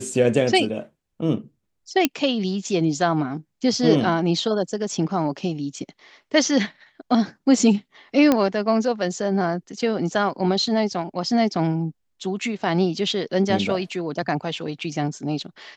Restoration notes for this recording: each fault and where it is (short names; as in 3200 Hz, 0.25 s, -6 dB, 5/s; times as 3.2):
2.05 pop -2 dBFS
8.32 pop -5 dBFS